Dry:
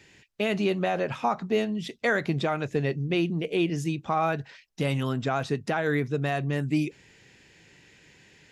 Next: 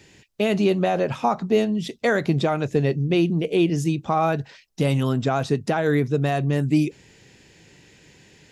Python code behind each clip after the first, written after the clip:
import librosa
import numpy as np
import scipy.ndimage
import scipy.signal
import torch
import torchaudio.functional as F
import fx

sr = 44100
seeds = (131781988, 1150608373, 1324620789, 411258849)

y = fx.peak_eq(x, sr, hz=1900.0, db=-6.0, octaves=1.8)
y = F.gain(torch.from_numpy(y), 6.5).numpy()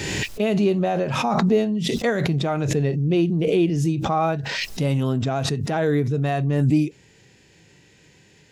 y = fx.hpss(x, sr, part='percussive', gain_db=-8)
y = fx.pre_swell(y, sr, db_per_s=24.0)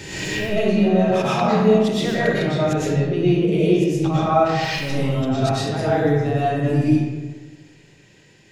y = fx.rev_freeverb(x, sr, rt60_s=1.4, hf_ratio=0.6, predelay_ms=75, drr_db=-9.0)
y = F.gain(torch.from_numpy(y), -7.0).numpy()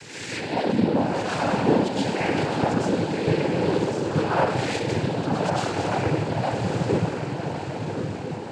y = np.where(x < 0.0, 10.0 ** (-12.0 / 20.0) * x, x)
y = fx.echo_diffused(y, sr, ms=1161, feedback_pct=51, wet_db=-5.0)
y = fx.noise_vocoder(y, sr, seeds[0], bands=8)
y = F.gain(torch.from_numpy(y), -2.0).numpy()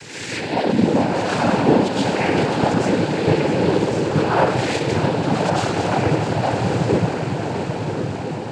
y = x + 10.0 ** (-9.0 / 20.0) * np.pad(x, (int(656 * sr / 1000.0), 0))[:len(x)]
y = F.gain(torch.from_numpy(y), 4.5).numpy()